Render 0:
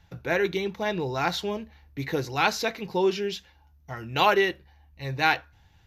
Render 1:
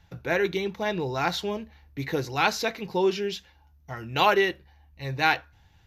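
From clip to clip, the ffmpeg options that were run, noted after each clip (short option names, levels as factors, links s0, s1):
-af anull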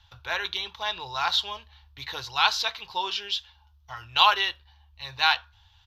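-af "firequalizer=gain_entry='entry(100,0);entry(150,-22);entry(230,-24);entry(980,6);entry(2100,-4);entry(3200,12);entry(6500,-1);entry(11000,-4)':delay=0.05:min_phase=1,volume=0.891"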